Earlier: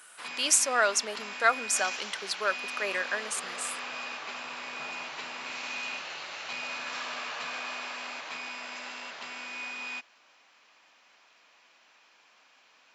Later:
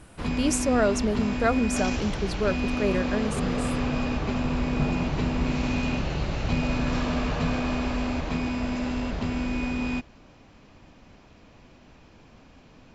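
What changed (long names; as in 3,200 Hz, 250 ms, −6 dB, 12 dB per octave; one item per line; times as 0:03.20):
speech −7.0 dB
master: remove high-pass filter 1,200 Hz 12 dB per octave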